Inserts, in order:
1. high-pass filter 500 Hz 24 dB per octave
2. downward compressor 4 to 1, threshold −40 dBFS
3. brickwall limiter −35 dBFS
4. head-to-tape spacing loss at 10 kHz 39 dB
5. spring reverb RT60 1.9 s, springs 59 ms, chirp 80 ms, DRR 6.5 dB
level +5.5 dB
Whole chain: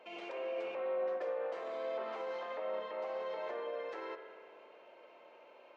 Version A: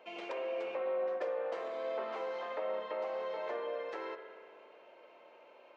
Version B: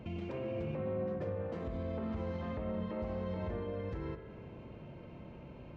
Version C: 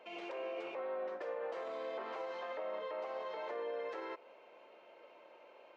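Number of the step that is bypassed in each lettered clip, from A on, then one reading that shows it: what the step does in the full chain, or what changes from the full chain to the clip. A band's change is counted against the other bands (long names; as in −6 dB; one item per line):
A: 3, change in integrated loudness +1.5 LU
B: 1, 250 Hz band +19.5 dB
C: 5, change in momentary loudness spread −3 LU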